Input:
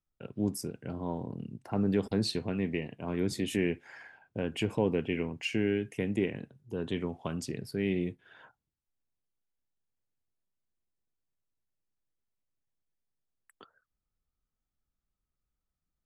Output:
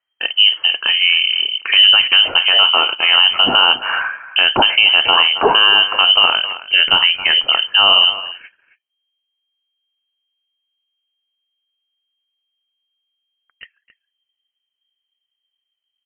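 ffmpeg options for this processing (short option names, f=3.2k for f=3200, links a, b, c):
-filter_complex "[0:a]agate=range=-13dB:threshold=-54dB:ratio=16:detection=peak,asetnsamples=n=441:p=0,asendcmd='8.05 equalizer g -5',equalizer=f=1.8k:t=o:w=1.9:g=9,asplit=2[a][b];[b]adelay=270,highpass=300,lowpass=3.4k,asoftclip=type=hard:threshold=-24dB,volume=-15dB[c];[a][c]amix=inputs=2:normalize=0,lowpass=f=2.7k:t=q:w=0.5098,lowpass=f=2.7k:t=q:w=0.6013,lowpass=f=2.7k:t=q:w=0.9,lowpass=f=2.7k:t=q:w=2.563,afreqshift=-3200,alimiter=level_in=22.5dB:limit=-1dB:release=50:level=0:latency=1,volume=-1dB"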